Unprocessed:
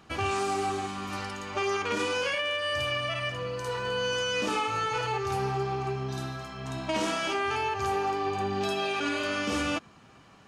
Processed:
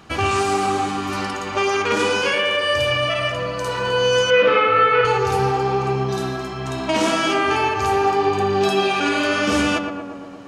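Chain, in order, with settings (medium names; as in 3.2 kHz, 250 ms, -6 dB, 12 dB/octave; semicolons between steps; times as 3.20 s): 4.30–5.05 s: cabinet simulation 120–3300 Hz, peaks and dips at 210 Hz -7 dB, 330 Hz -9 dB, 500 Hz +9 dB, 830 Hz -8 dB, 1.4 kHz +7 dB, 2.1 kHz +7 dB; tape echo 118 ms, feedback 80%, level -4.5 dB, low-pass 1.4 kHz; trim +9 dB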